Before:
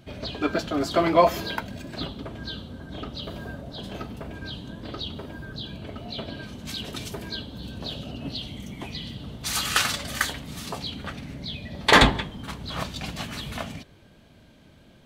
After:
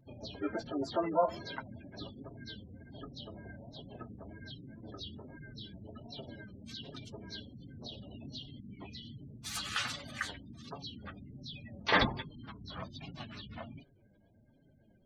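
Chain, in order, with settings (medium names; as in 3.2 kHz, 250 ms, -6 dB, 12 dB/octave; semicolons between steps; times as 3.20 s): spectral gate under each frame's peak -15 dB strong; flange 1.3 Hz, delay 6.9 ms, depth 3.7 ms, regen -15%; harmony voices +5 st -12 dB; trim -8 dB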